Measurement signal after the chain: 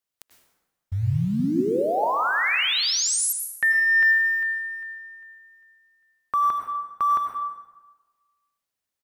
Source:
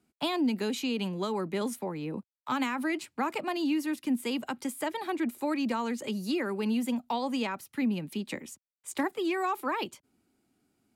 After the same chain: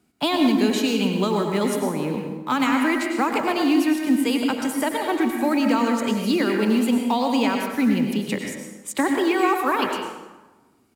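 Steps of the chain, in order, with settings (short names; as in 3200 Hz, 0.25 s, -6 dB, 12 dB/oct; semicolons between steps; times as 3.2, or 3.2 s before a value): in parallel at -8 dB: short-mantissa float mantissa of 2-bit; on the sum: speakerphone echo 80 ms, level -15 dB; plate-style reverb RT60 1.2 s, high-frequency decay 0.65×, pre-delay 85 ms, DRR 2.5 dB; gain +5 dB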